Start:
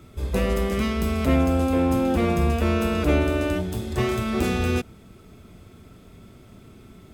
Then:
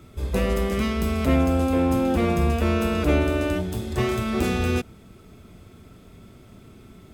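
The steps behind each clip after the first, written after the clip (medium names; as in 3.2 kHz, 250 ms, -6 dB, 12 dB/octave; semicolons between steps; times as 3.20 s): no audible change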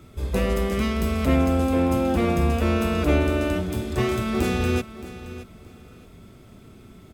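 feedback delay 622 ms, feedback 23%, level -15 dB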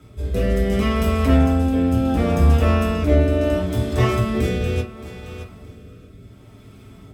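rotary cabinet horn 0.7 Hz; reverberation RT60 0.30 s, pre-delay 3 ms, DRR -2.5 dB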